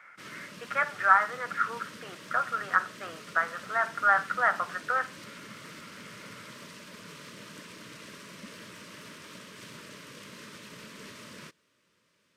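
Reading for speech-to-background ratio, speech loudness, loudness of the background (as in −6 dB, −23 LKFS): 18.0 dB, −27.5 LKFS, −45.5 LKFS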